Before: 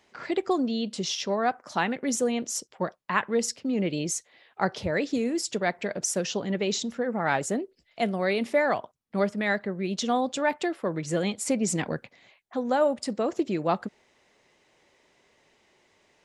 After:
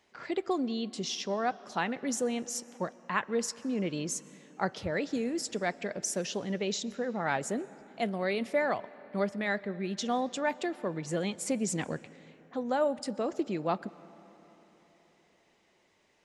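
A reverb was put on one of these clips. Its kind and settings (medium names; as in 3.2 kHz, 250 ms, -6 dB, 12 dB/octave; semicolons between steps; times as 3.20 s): algorithmic reverb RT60 4 s, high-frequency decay 0.6×, pre-delay 85 ms, DRR 19 dB; trim -5 dB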